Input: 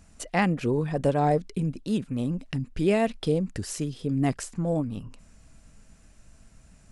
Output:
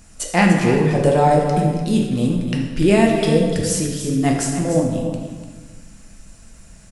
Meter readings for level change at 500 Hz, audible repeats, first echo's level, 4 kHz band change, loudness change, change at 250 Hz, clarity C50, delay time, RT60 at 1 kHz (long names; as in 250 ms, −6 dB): +9.5 dB, 1, −9.5 dB, +11.5 dB, +9.5 dB, +10.0 dB, 2.0 dB, 296 ms, 1.4 s